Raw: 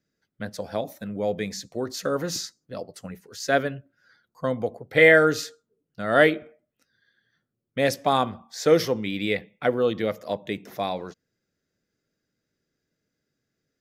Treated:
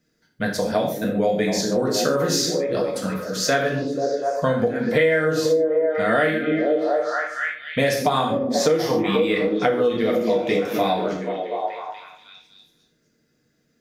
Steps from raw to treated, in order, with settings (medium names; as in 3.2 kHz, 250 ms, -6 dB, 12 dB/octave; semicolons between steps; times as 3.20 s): repeats whose band climbs or falls 242 ms, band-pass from 260 Hz, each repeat 0.7 oct, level -2.5 dB; gated-style reverb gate 170 ms falling, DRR -1.5 dB; compression 8:1, threshold -24 dBFS, peak gain reduction 19.5 dB; trim +7.5 dB